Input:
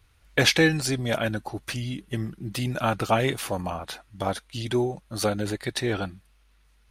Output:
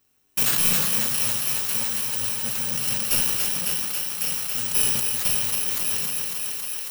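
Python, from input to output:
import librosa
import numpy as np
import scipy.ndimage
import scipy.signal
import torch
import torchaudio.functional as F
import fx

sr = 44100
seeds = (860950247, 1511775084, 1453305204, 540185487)

p1 = fx.bit_reversed(x, sr, seeds[0], block=128)
p2 = scipy.signal.sosfilt(scipy.signal.butter(2, 140.0, 'highpass', fs=sr, output='sos'), p1)
p3 = fx.high_shelf(p2, sr, hz=7200.0, db=11.0)
p4 = fx.level_steps(p3, sr, step_db=13)
p5 = fx.sample_hold(p4, sr, seeds[1], rate_hz=14000.0, jitter_pct=0)
p6 = p4 + (p5 * librosa.db_to_amplitude(-10.0))
p7 = np.clip(p6, -10.0 ** (-15.0 / 20.0), 10.0 ** (-15.0 / 20.0))
p8 = p7 + fx.echo_thinned(p7, sr, ms=275, feedback_pct=84, hz=280.0, wet_db=-5, dry=0)
p9 = fx.room_shoebox(p8, sr, seeds[2], volume_m3=1700.0, walls='mixed', distance_m=0.96)
p10 = fx.sustainer(p9, sr, db_per_s=23.0)
y = p10 * librosa.db_to_amplitude(-3.0)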